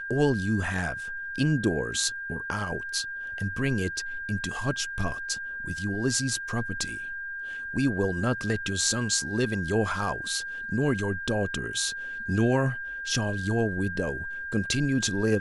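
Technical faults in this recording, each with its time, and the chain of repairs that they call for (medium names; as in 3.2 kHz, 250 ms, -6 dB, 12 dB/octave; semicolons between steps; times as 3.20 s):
whine 1.6 kHz -33 dBFS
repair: band-stop 1.6 kHz, Q 30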